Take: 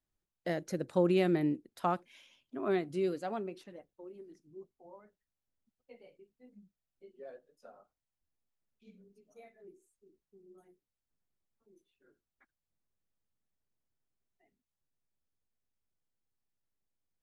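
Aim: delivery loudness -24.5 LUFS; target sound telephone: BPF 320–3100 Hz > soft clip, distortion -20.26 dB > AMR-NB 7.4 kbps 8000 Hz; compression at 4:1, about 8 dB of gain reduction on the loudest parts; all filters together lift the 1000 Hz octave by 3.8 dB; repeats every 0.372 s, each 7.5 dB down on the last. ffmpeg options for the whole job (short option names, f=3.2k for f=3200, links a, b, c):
-af "equalizer=f=1k:t=o:g=5.5,acompressor=threshold=-32dB:ratio=4,highpass=320,lowpass=3.1k,aecho=1:1:372|744|1116|1488|1860:0.422|0.177|0.0744|0.0312|0.0131,asoftclip=threshold=-26dB,volume=18.5dB" -ar 8000 -c:a libopencore_amrnb -b:a 7400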